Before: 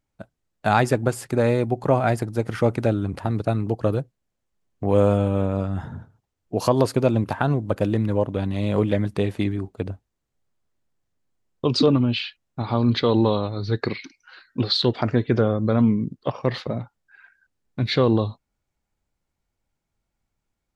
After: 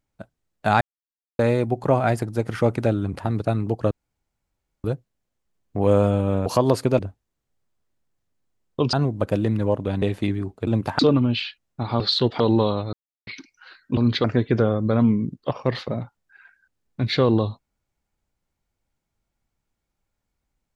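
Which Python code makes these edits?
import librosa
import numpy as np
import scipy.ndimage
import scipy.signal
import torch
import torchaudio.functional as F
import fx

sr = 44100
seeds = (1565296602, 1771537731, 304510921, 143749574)

y = fx.edit(x, sr, fx.silence(start_s=0.81, length_s=0.58),
    fx.insert_room_tone(at_s=3.91, length_s=0.93),
    fx.cut(start_s=5.53, length_s=1.04),
    fx.swap(start_s=7.1, length_s=0.32, other_s=9.84, other_length_s=1.94),
    fx.cut(start_s=8.51, length_s=0.68),
    fx.swap(start_s=12.79, length_s=0.27, other_s=14.63, other_length_s=0.4),
    fx.silence(start_s=13.59, length_s=0.34), tone=tone)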